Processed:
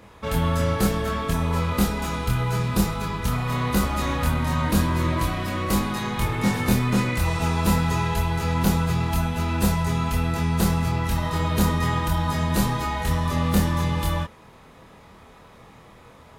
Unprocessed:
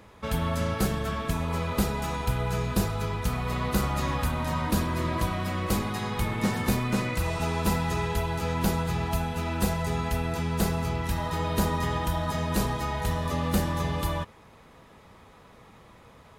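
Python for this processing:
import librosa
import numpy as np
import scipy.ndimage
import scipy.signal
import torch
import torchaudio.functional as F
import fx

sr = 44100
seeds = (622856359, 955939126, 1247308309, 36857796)

y = fx.doubler(x, sr, ms=25.0, db=-2.0)
y = y * librosa.db_to_amplitude(2.0)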